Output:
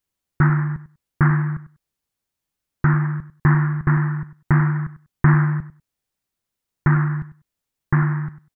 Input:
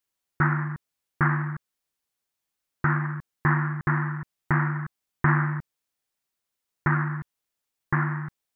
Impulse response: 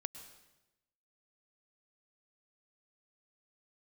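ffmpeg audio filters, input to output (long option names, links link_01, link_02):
-af "lowshelf=frequency=280:gain=11,aecho=1:1:98|196:0.178|0.0267"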